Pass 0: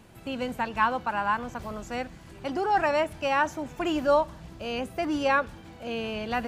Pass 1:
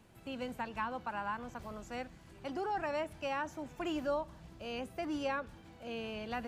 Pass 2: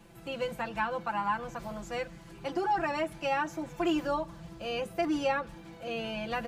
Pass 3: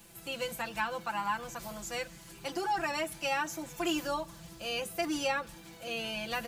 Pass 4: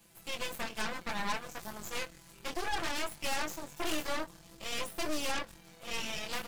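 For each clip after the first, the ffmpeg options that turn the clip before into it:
-filter_complex "[0:a]acrossover=split=430[a][b];[b]acompressor=threshold=-26dB:ratio=3[c];[a][c]amix=inputs=2:normalize=0,volume=-9dB"
-af "aecho=1:1:5.9:0.93,volume=4dB"
-af "crystalizer=i=5:c=0,volume=-4.5dB"
-af "flanger=delay=19.5:depth=3.1:speed=0.61,aeval=exprs='0.075*(cos(1*acos(clip(val(0)/0.075,-1,1)))-cos(1*PI/2))+0.015*(cos(3*acos(clip(val(0)/0.075,-1,1)))-cos(3*PI/2))+0.00422*(cos(5*acos(clip(val(0)/0.075,-1,1)))-cos(5*PI/2))+0.0188*(cos(8*acos(clip(val(0)/0.075,-1,1)))-cos(8*PI/2))':c=same"

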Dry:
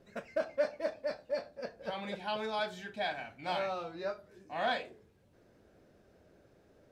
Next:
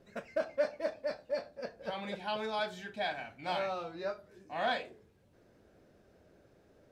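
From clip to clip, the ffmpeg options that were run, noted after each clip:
-af anull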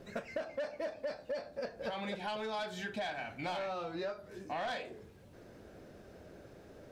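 -af "asoftclip=type=tanh:threshold=-30dB,acompressor=threshold=-46dB:ratio=6,volume=9.5dB"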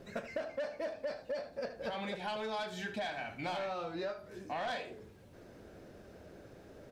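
-af "aecho=1:1:77:0.224"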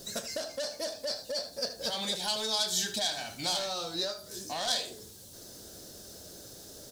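-af "aexciter=amount=13.4:drive=4.9:freq=3.6k,volume=1dB"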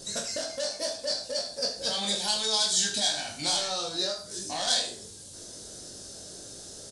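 -af "aresample=22050,aresample=44100,crystalizer=i=1:c=0,aecho=1:1:20|43|69.45|99.87|134.8:0.631|0.398|0.251|0.158|0.1"

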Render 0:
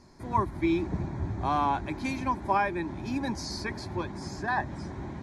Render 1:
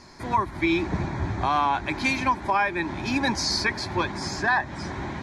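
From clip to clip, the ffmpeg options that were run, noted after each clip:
-af "equalizer=f=2.7k:w=0.31:g=11,alimiter=limit=-16.5dB:level=0:latency=1:release=297,volume=3.5dB"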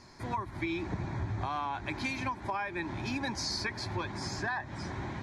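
-af "equalizer=f=110:w=4.2:g=8,acompressor=threshold=-24dB:ratio=6,volume=-6.5dB"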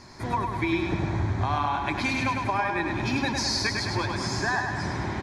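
-af "aecho=1:1:103|206|309|412|515|618|721|824:0.596|0.351|0.207|0.122|0.0722|0.0426|0.0251|0.0148,volume=6.5dB"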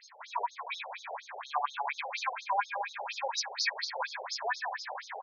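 -filter_complex "[0:a]asplit=2[a][b];[b]adelay=26,volume=-12dB[c];[a][c]amix=inputs=2:normalize=0,aeval=exprs='val(0)+0.00178*sin(2*PI*6400*n/s)':c=same,afftfilt=real='re*between(b*sr/1024,580*pow(5000/580,0.5+0.5*sin(2*PI*4.2*pts/sr))/1.41,580*pow(5000/580,0.5+0.5*sin(2*PI*4.2*pts/sr))*1.41)':imag='im*between(b*sr/1024,580*pow(5000/580,0.5+0.5*sin(2*PI*4.2*pts/sr))/1.41,580*pow(5000/580,0.5+0.5*sin(2*PI*4.2*pts/sr))*1.41)':win_size=1024:overlap=0.75"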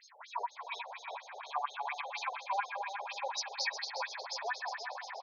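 -af "aecho=1:1:360|720|1080|1440|1800|2160:0.355|0.185|0.0959|0.0499|0.0259|0.0135,volume=-4dB"

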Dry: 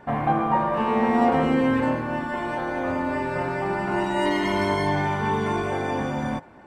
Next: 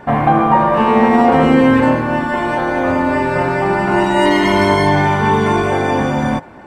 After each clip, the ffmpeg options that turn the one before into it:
-af "alimiter=level_in=11.5dB:limit=-1dB:release=50:level=0:latency=1,volume=-1dB"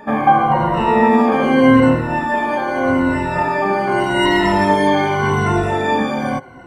-af "afftfilt=real='re*pow(10,19/40*sin(2*PI*(2*log(max(b,1)*sr/1024/100)/log(2)-(-0.84)*(pts-256)/sr)))':imag='im*pow(10,19/40*sin(2*PI*(2*log(max(b,1)*sr/1024/100)/log(2)-(-0.84)*(pts-256)/sr)))':win_size=1024:overlap=0.75,volume=-5.5dB"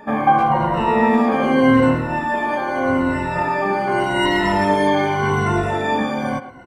-filter_complex "[0:a]asplit=2[a][b];[b]adelay=110,highpass=300,lowpass=3.4k,asoftclip=type=hard:threshold=-9dB,volume=-12dB[c];[a][c]amix=inputs=2:normalize=0,volume=-2.5dB"

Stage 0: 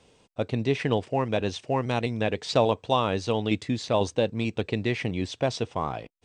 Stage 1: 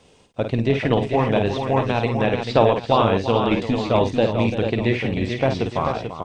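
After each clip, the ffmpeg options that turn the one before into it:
-filter_complex "[0:a]acrossover=split=3700[a][b];[b]acompressor=threshold=-53dB:ratio=4:attack=1:release=60[c];[a][c]amix=inputs=2:normalize=0,tremolo=f=240:d=0.462,asplit=2[d][e];[e]aecho=0:1:52|341|440|863:0.447|0.282|0.473|0.168[f];[d][f]amix=inputs=2:normalize=0,volume=7dB"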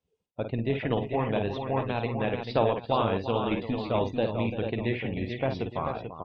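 -af "afftdn=nr=25:nf=-40,volume=-8.5dB"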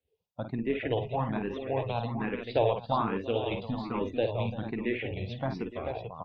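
-filter_complex "[0:a]asplit=2[a][b];[b]afreqshift=1.2[c];[a][c]amix=inputs=2:normalize=1"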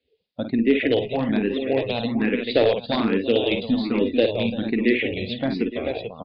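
-af "aeval=exprs='clip(val(0),-1,0.0841)':c=same,equalizer=f=125:t=o:w=1:g=-6,equalizer=f=250:t=o:w=1:g=11,equalizer=f=500:t=o:w=1:g=6,equalizer=f=1k:t=o:w=1:g=-10,equalizer=f=2k:t=o:w=1:g=8,equalizer=f=4k:t=o:w=1:g=11,aresample=11025,aresample=44100,volume=3.5dB"

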